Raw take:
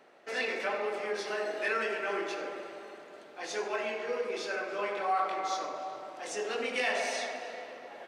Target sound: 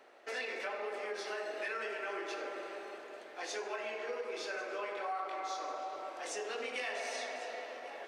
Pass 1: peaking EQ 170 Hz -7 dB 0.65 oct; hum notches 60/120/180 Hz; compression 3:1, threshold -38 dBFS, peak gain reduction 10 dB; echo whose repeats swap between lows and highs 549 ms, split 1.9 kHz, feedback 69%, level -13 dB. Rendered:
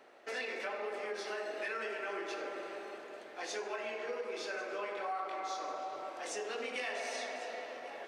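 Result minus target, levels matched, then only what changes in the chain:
125 Hz band +5.5 dB
change: peaking EQ 170 Hz -17.5 dB 0.65 oct

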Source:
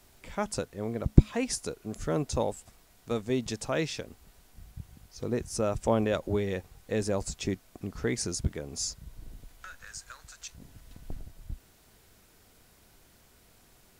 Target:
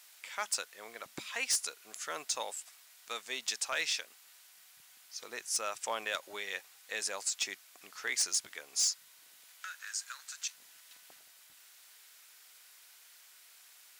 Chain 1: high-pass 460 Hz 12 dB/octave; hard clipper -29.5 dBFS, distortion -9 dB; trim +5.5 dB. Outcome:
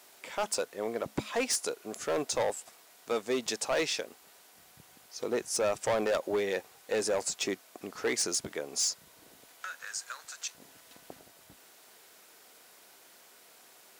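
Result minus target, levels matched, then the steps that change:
500 Hz band +12.0 dB
change: high-pass 1.6 kHz 12 dB/octave

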